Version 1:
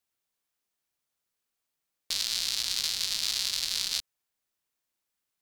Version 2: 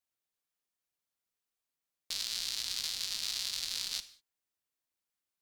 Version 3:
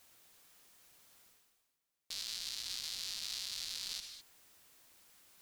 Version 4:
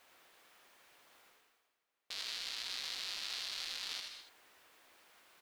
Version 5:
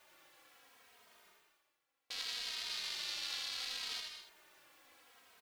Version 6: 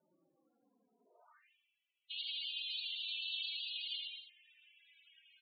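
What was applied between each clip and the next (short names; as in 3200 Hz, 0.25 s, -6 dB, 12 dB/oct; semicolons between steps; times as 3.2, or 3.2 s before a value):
non-linear reverb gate 0.22 s falling, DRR 11.5 dB; gain -6.5 dB
reverse; upward compressor, threshold -47 dBFS; reverse; limiter -27.5 dBFS, peak gain reduction 10.5 dB; gain +2.5 dB
tone controls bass -14 dB, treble -14 dB; on a send: echo 81 ms -6 dB; on the sum: gain +6.5 dB
endless flanger 2.9 ms -0.68 Hz; gain +3.5 dB
band-pass sweep 210 Hz -> 2900 Hz, 0.97–1.52; loudest bins only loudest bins 16; gain +8.5 dB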